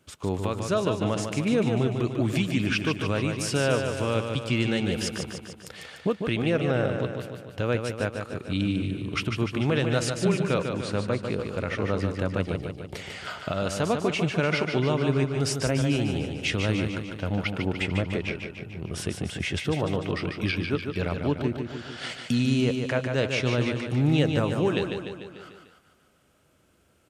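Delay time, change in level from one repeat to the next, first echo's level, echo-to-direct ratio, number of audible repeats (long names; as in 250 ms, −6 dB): 148 ms, −4.5 dB, −6.0 dB, −4.0 dB, 6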